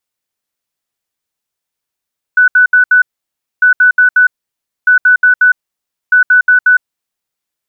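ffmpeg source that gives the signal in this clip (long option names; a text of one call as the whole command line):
ffmpeg -f lavfi -i "aevalsrc='0.668*sin(2*PI*1490*t)*clip(min(mod(mod(t,1.25),0.18),0.11-mod(mod(t,1.25),0.18))/0.005,0,1)*lt(mod(t,1.25),0.72)':duration=5:sample_rate=44100" out.wav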